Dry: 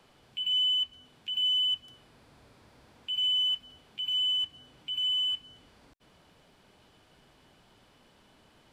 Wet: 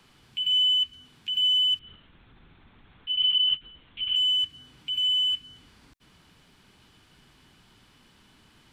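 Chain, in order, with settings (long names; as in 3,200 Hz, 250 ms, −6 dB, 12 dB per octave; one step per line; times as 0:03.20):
dynamic equaliser 880 Hz, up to −7 dB, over −58 dBFS, Q 2.5
0:01.79–0:04.16: linear-prediction vocoder at 8 kHz whisper
parametric band 590 Hz −11.5 dB 1.1 octaves
level +5 dB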